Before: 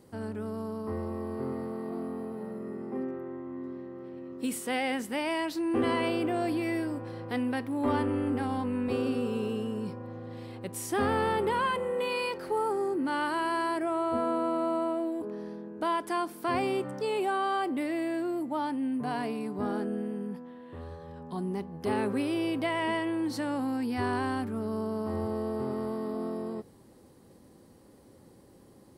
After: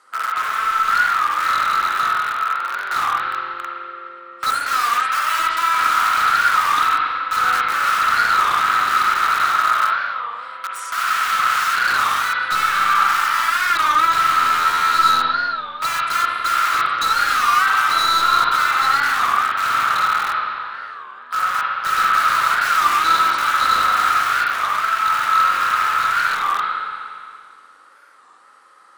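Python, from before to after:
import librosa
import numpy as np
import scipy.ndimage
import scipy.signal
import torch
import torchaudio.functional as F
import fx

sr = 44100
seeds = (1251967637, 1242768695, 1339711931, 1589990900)

p1 = scipy.signal.sosfilt(scipy.signal.butter(4, 9800.0, 'lowpass', fs=sr, output='sos'), x)
p2 = fx.rider(p1, sr, range_db=4, speed_s=2.0)
p3 = p1 + (p2 * librosa.db_to_amplitude(-2.0))
p4 = (np.mod(10.0 ** (24.0 / 20.0) * p3 + 1.0, 2.0) - 1.0) / 10.0 ** (24.0 / 20.0)
p5 = fx.highpass_res(p4, sr, hz=1300.0, q=14.0)
p6 = 10.0 ** (-14.5 / 20.0) * (np.abs((p5 / 10.0 ** (-14.5 / 20.0) + 3.0) % 4.0 - 2.0) - 1.0)
p7 = fx.rev_spring(p6, sr, rt60_s=2.2, pass_ms=(40, 56), chirp_ms=40, drr_db=-3.5)
p8 = fx.record_warp(p7, sr, rpm=33.33, depth_cents=160.0)
y = p8 * librosa.db_to_amplitude(-1.0)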